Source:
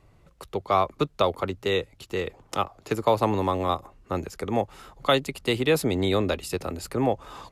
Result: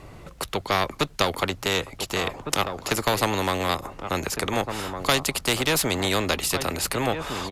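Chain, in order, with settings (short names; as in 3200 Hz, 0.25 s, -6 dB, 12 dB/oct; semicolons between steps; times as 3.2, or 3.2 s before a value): added harmonics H 2 -13 dB, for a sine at -7.5 dBFS; outdoor echo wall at 250 m, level -14 dB; spectral compressor 2:1; gain +3 dB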